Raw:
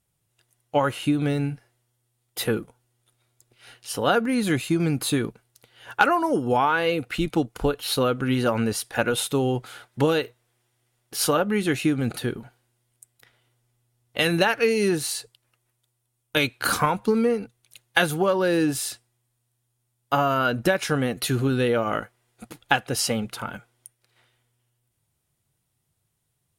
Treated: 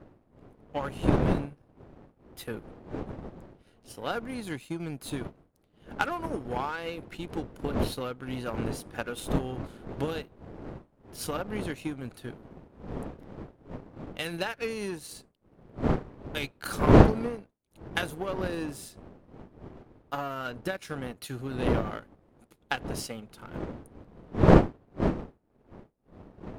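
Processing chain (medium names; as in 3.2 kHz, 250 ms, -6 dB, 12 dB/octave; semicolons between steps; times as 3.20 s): wind noise 370 Hz -23 dBFS; power-law waveshaper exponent 1.4; trim -4.5 dB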